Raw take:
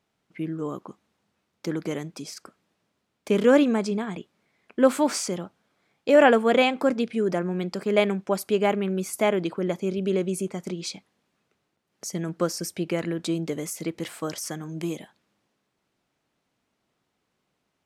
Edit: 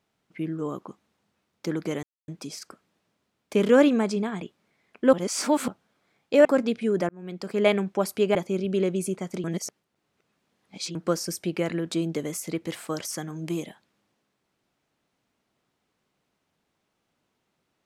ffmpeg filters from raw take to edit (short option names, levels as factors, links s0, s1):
-filter_complex "[0:a]asplit=9[s0][s1][s2][s3][s4][s5][s6][s7][s8];[s0]atrim=end=2.03,asetpts=PTS-STARTPTS,afade=t=out:st=2.026:d=0.004:c=hsin,apad=pad_dur=0.25[s9];[s1]atrim=start=2.03:end=4.882,asetpts=PTS-STARTPTS,afade=t=in:d=0.004:c=hsin[s10];[s2]atrim=start=4.878:end=5.432,asetpts=PTS-STARTPTS,areverse[s11];[s3]atrim=start=5.428:end=6.202[s12];[s4]atrim=start=6.768:end=7.41,asetpts=PTS-STARTPTS,afade=t=out:st=0.638:d=0.004:c=hsin[s13];[s5]atrim=start=7.41:end=8.672,asetpts=PTS-STARTPTS,afade=t=in:d=0.52[s14];[s6]atrim=start=9.678:end=10.772[s15];[s7]atrim=start=10.768:end=12.282,asetpts=PTS-STARTPTS,areverse[s16];[s8]atrim=start=12.278[s17];[s9][s10]concat=n=2:v=0:a=1[s18];[s18][s11]acrossfade=d=0.004:c1=hsin:c2=hsin[s19];[s19][s12]acrossfade=d=0.004:c1=hsin:c2=hsin[s20];[s13][s14]concat=n=2:v=0:a=1[s21];[s20][s21]acrossfade=d=0.004:c1=hsin:c2=hsin[s22];[s22][s15]acrossfade=d=0.004:c1=hsin:c2=hsin[s23];[s23][s16]acrossfade=d=0.004:c1=hsin:c2=hsin[s24];[s24][s17]acrossfade=d=0.004:c1=hsin:c2=hsin"